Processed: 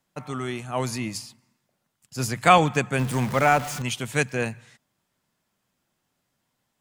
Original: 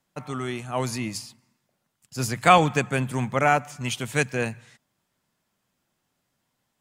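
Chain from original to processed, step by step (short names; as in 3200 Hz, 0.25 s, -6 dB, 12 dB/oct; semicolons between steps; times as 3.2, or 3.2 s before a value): 2.99–3.82 zero-crossing step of -29 dBFS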